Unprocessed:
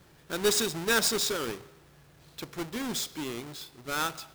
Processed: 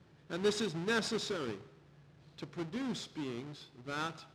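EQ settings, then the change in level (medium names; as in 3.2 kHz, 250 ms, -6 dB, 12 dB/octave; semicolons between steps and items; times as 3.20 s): band-pass 110–4900 Hz; bass shelf 270 Hz +10.5 dB; -8.0 dB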